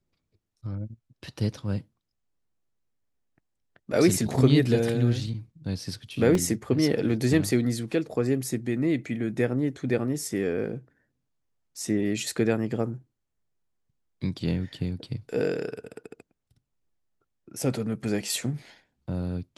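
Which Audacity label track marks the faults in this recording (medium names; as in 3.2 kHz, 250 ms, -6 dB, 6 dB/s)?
6.350000	6.350000	dropout 2.1 ms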